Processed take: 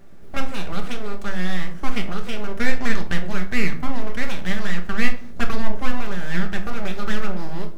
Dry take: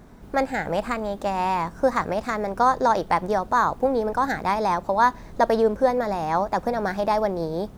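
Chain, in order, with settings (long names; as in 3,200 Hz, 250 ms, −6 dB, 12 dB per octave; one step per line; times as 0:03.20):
full-wave rectification
parametric band 950 Hz −8.5 dB 0.48 octaves
rectangular room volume 430 cubic metres, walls furnished, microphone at 1.2 metres
level −2 dB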